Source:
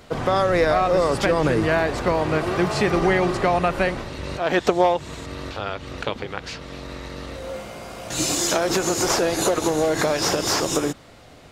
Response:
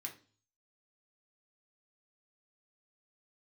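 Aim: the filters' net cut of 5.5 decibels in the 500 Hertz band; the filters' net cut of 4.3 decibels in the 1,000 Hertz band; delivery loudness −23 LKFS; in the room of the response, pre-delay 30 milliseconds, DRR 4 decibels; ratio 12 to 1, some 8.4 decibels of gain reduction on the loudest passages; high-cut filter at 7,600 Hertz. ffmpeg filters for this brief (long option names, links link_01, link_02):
-filter_complex "[0:a]lowpass=7600,equalizer=frequency=500:width_type=o:gain=-6,equalizer=frequency=1000:width_type=o:gain=-3.5,acompressor=threshold=-25dB:ratio=12,asplit=2[link_01][link_02];[1:a]atrim=start_sample=2205,adelay=30[link_03];[link_02][link_03]afir=irnorm=-1:irlink=0,volume=-1.5dB[link_04];[link_01][link_04]amix=inputs=2:normalize=0,volume=6.5dB"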